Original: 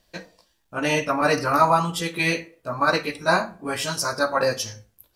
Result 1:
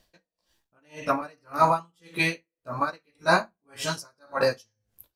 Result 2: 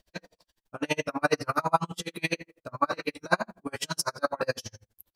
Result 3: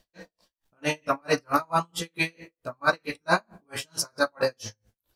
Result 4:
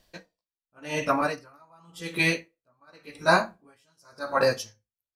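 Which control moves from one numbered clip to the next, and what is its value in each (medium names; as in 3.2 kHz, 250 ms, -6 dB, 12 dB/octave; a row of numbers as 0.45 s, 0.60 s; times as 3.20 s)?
logarithmic tremolo, rate: 1.8 Hz, 12 Hz, 4.5 Hz, 0.9 Hz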